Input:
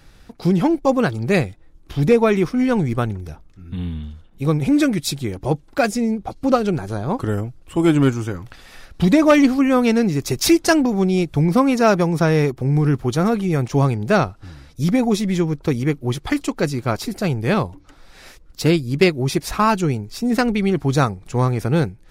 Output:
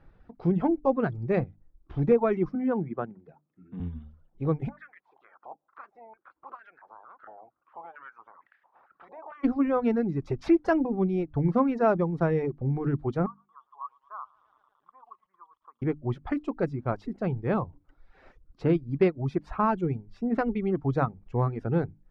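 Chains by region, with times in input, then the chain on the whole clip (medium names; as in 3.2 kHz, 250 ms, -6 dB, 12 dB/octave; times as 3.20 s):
2.55–3.80 s: high-pass 160 Hz 24 dB/octave + distance through air 270 m
4.68–9.43 s: spectral peaks clipped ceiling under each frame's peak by 24 dB + compression 2:1, threshold -33 dBFS + step-sequenced band-pass 4.4 Hz 760–1700 Hz
13.26–15.82 s: Butterworth band-pass 1.1 kHz, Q 5.1 + bit-crushed delay 112 ms, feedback 80%, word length 8-bit, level -13 dB
whole clip: hum notches 50/100/150/200/250/300 Hz; reverb removal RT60 0.85 s; low-pass 1.3 kHz 12 dB/octave; trim -6.5 dB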